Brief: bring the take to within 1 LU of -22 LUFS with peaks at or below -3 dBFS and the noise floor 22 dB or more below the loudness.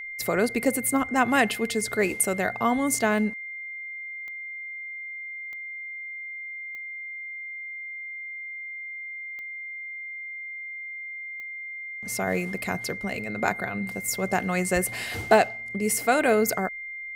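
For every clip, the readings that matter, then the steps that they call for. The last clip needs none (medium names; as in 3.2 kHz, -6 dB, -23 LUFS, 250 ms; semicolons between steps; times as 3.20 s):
clicks found 7; steady tone 2.1 kHz; tone level -34 dBFS; loudness -27.5 LUFS; peak level -5.5 dBFS; loudness target -22.0 LUFS
-> de-click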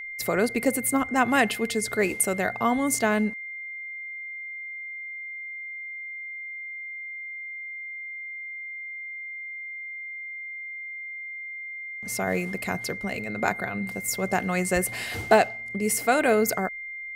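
clicks found 0; steady tone 2.1 kHz; tone level -34 dBFS
-> band-stop 2.1 kHz, Q 30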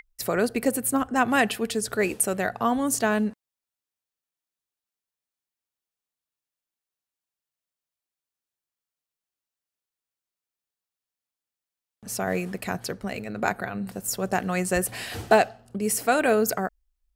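steady tone not found; loudness -25.5 LUFS; peak level -5.5 dBFS; loudness target -22.0 LUFS
-> trim +3.5 dB; peak limiter -3 dBFS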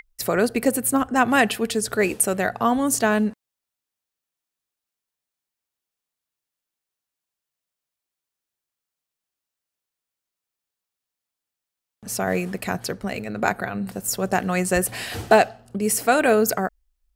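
loudness -22.0 LUFS; peak level -3.0 dBFS; noise floor -87 dBFS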